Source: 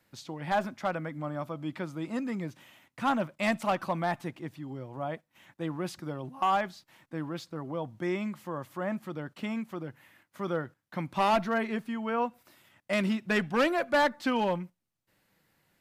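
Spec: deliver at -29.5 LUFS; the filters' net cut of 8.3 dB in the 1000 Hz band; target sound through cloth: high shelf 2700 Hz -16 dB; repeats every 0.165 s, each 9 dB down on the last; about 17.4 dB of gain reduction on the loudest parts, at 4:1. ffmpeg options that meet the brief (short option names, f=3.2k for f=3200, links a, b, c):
-af "equalizer=f=1k:t=o:g=-9,acompressor=threshold=-46dB:ratio=4,highshelf=f=2.7k:g=-16,aecho=1:1:165|330|495|660:0.355|0.124|0.0435|0.0152,volume=19dB"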